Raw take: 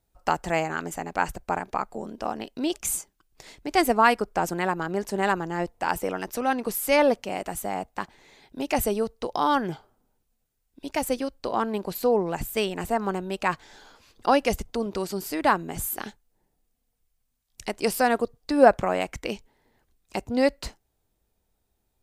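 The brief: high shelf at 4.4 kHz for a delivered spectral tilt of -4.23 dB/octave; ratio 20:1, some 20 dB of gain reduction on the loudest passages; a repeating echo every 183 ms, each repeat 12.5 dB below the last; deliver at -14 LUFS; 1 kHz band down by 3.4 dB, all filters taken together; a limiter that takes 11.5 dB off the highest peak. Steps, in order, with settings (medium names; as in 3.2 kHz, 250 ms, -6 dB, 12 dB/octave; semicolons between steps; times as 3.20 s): peaking EQ 1 kHz -4.5 dB; treble shelf 4.4 kHz -4.5 dB; compression 20:1, threshold -31 dBFS; peak limiter -29 dBFS; feedback delay 183 ms, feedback 24%, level -12.5 dB; trim +26.5 dB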